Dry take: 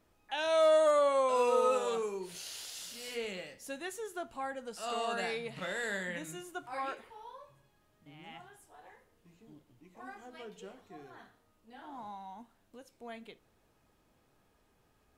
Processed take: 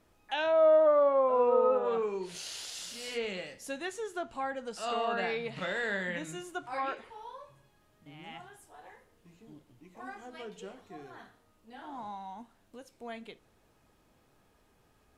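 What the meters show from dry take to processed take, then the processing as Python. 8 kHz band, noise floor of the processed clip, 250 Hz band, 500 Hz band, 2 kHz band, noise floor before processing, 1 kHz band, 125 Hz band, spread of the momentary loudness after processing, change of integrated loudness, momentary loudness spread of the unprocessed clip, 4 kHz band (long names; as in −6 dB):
−0.5 dB, −68 dBFS, +3.5 dB, +3.0 dB, +2.5 dB, −71 dBFS, +1.5 dB, +3.5 dB, 22 LU, +2.5 dB, 23 LU, +0.5 dB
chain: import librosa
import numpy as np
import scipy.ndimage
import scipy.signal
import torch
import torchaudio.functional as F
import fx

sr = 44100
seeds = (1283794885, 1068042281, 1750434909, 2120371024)

y = fx.env_lowpass_down(x, sr, base_hz=1100.0, full_db=-27.0)
y = F.gain(torch.from_numpy(y), 3.5).numpy()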